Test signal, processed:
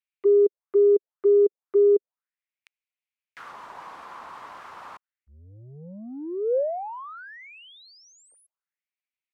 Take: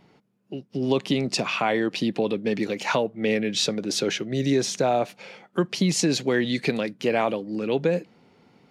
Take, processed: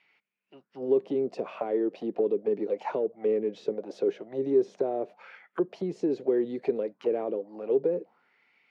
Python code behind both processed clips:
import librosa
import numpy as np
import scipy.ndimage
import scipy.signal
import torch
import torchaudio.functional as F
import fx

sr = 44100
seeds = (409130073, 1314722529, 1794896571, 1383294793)

p1 = 10.0 ** (-25.5 / 20.0) * np.tanh(x / 10.0 ** (-25.5 / 20.0))
p2 = x + (p1 * 10.0 ** (-3.0 / 20.0))
y = fx.auto_wah(p2, sr, base_hz=400.0, top_hz=2400.0, q=4.0, full_db=-18.0, direction='down')